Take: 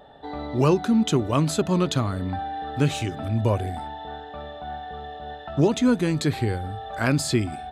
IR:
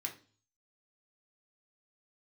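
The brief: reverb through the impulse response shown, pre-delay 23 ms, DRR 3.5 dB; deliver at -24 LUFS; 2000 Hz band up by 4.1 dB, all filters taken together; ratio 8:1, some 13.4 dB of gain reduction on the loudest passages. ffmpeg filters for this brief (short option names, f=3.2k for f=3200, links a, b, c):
-filter_complex "[0:a]equalizer=f=2k:t=o:g=5.5,acompressor=threshold=-29dB:ratio=8,asplit=2[a][b];[1:a]atrim=start_sample=2205,adelay=23[c];[b][c]afir=irnorm=-1:irlink=0,volume=-3dB[d];[a][d]amix=inputs=2:normalize=0,volume=8dB"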